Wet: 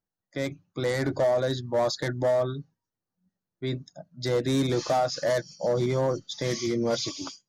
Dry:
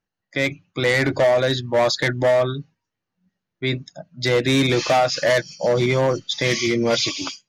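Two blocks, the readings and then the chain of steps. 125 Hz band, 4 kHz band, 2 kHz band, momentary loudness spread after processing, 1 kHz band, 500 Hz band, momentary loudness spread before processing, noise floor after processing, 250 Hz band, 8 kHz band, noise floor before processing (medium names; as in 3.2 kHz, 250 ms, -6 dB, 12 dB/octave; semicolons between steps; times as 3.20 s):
-6.0 dB, -11.0 dB, -14.0 dB, 9 LU, -7.5 dB, -6.5 dB, 8 LU, under -85 dBFS, -6.0 dB, -7.5 dB, -83 dBFS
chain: peaking EQ 2.5 kHz -13 dB 1 oct; trim -6 dB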